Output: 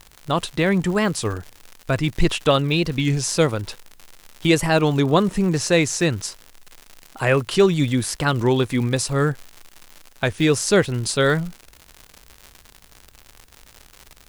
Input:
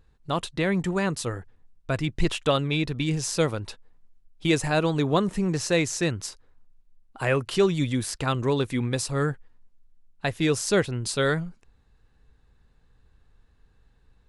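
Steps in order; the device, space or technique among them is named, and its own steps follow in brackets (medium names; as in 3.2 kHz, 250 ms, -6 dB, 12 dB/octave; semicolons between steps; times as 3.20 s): warped LP (warped record 33 1/3 rpm, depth 160 cents; crackle 140 per s -34 dBFS; white noise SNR 41 dB); trim +5.5 dB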